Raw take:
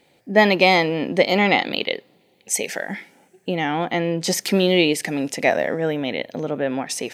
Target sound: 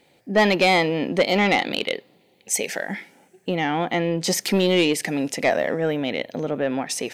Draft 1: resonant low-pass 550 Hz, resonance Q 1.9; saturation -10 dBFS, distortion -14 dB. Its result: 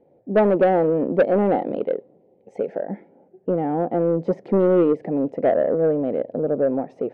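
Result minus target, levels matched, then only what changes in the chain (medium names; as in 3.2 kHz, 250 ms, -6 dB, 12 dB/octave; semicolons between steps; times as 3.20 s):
500 Hz band +3.0 dB
remove: resonant low-pass 550 Hz, resonance Q 1.9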